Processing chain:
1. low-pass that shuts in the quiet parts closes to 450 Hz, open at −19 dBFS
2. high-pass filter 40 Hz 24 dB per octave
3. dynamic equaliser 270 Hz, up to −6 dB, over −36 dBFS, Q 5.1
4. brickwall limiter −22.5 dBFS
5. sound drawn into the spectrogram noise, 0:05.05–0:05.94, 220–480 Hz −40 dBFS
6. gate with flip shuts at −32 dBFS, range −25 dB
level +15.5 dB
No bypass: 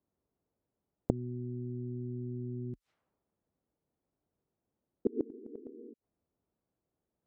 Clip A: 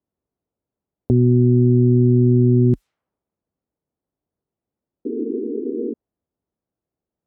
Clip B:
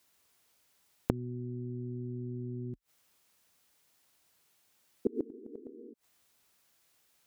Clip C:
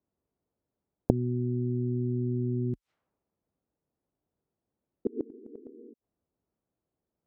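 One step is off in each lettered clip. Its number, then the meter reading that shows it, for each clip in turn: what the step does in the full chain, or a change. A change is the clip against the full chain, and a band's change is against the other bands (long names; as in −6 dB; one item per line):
6, change in crest factor −19.5 dB
1, 1 kHz band +4.5 dB
4, average gain reduction 9.0 dB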